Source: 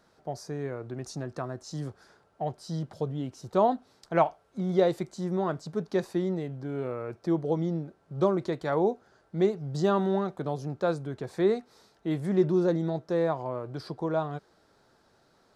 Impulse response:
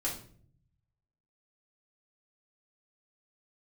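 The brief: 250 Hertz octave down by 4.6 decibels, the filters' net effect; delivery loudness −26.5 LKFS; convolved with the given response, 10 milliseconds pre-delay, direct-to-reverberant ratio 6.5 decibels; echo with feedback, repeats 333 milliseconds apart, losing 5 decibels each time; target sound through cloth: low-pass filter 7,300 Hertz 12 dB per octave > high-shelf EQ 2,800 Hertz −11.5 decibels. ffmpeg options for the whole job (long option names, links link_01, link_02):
-filter_complex "[0:a]equalizer=frequency=250:width_type=o:gain=-8,aecho=1:1:333|666|999|1332|1665|1998|2331:0.562|0.315|0.176|0.0988|0.0553|0.031|0.0173,asplit=2[link_01][link_02];[1:a]atrim=start_sample=2205,adelay=10[link_03];[link_02][link_03]afir=irnorm=-1:irlink=0,volume=-10dB[link_04];[link_01][link_04]amix=inputs=2:normalize=0,lowpass=7300,highshelf=frequency=2800:gain=-11.5,volume=4dB"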